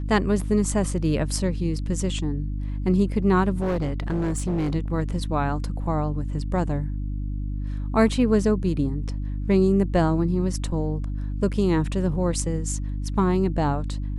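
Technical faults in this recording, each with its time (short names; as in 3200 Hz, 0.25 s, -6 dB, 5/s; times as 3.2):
hum 50 Hz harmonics 6 -28 dBFS
3.6–4.76 clipped -20.5 dBFS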